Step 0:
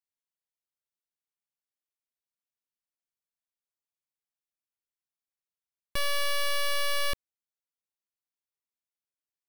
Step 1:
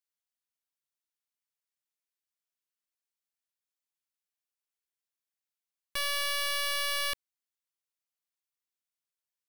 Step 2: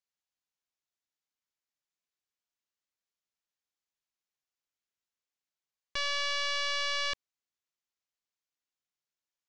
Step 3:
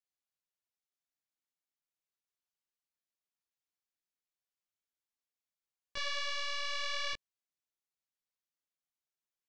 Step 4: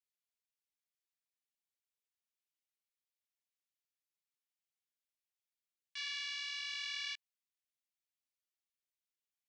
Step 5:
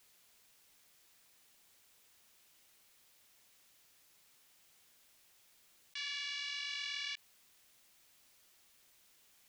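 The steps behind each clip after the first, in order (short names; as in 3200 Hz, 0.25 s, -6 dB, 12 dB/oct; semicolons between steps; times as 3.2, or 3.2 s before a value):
tilt shelf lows -6.5 dB, about 630 Hz; gain -5.5 dB
steep low-pass 7500 Hz 72 dB/oct
detuned doubles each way 29 cents; gain -2 dB
ladder high-pass 1600 Hz, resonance 25%; gain +2 dB
fast leveller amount 50%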